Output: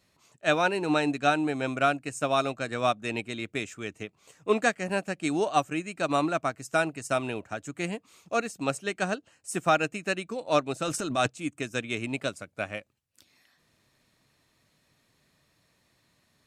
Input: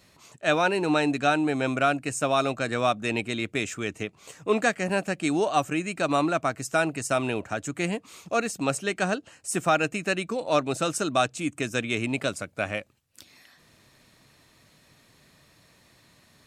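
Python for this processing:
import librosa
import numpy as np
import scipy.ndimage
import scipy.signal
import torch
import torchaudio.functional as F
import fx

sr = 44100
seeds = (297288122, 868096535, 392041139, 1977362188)

y = fx.transient(x, sr, attack_db=-4, sustain_db=9, at=(10.82, 11.29), fade=0.02)
y = fx.upward_expand(y, sr, threshold_db=-38.0, expansion=1.5)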